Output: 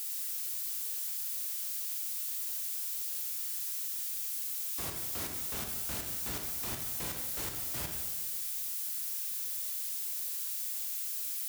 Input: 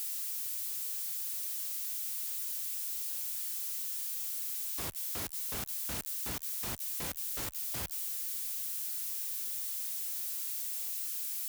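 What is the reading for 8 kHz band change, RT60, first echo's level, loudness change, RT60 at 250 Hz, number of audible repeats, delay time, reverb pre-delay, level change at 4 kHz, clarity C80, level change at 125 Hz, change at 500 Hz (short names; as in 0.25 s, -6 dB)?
+0.5 dB, 1.5 s, none, +0.5 dB, 1.6 s, none, none, 34 ms, +1.0 dB, 5.0 dB, +1.5 dB, +1.5 dB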